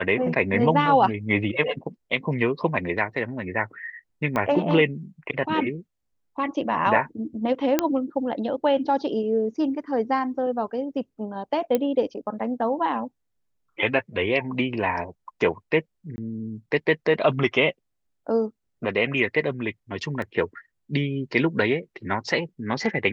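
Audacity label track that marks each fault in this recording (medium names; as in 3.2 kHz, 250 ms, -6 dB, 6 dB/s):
4.360000	4.360000	pop -13 dBFS
7.790000	7.790000	pop -5 dBFS
11.750000	11.750000	pop -10 dBFS
16.160000	16.180000	dropout 20 ms
20.220000	20.220000	dropout 2.1 ms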